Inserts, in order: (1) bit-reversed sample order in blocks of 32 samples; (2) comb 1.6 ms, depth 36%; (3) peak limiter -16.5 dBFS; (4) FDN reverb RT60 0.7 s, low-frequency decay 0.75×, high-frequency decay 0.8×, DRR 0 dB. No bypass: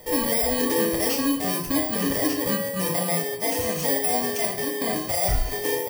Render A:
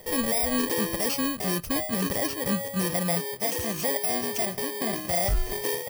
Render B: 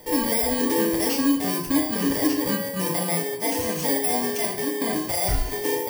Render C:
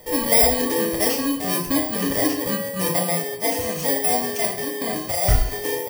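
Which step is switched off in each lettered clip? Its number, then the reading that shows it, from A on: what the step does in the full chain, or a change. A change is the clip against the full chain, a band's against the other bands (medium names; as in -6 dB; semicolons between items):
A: 4, crest factor change -3.5 dB; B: 2, 250 Hz band +3.0 dB; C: 3, crest factor change +5.5 dB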